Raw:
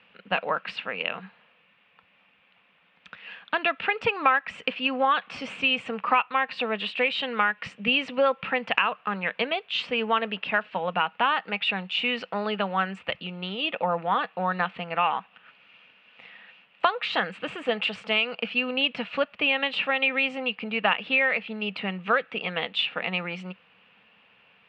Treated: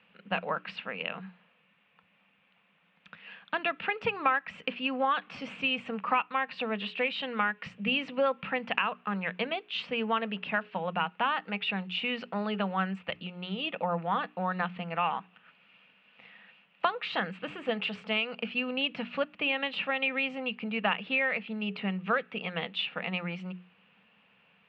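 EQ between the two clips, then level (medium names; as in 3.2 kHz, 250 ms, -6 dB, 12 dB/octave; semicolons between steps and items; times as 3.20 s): distance through air 69 m; peaking EQ 180 Hz +7.5 dB 0.75 oct; hum notches 60/120/180/240/300/360/420 Hz; -5.0 dB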